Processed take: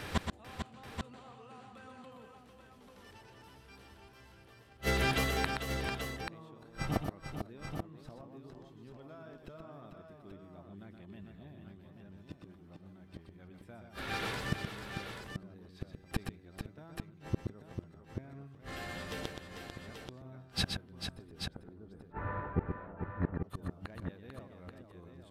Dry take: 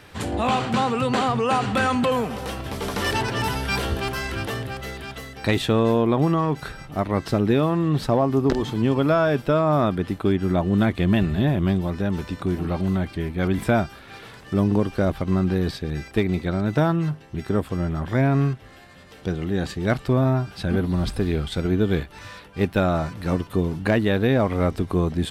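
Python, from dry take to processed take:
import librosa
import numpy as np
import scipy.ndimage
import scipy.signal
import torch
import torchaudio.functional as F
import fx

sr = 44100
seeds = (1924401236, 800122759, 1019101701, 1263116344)

y = fx.lowpass(x, sr, hz=1400.0, slope=24, at=(21.29, 23.44))
y = fx.gate_flip(y, sr, shuts_db=-22.0, range_db=-37)
y = fx.echo_multitap(y, sr, ms=(123, 445, 834), db=(-6.0, -7.5, -7.0))
y = y * 10.0 ** (4.0 / 20.0)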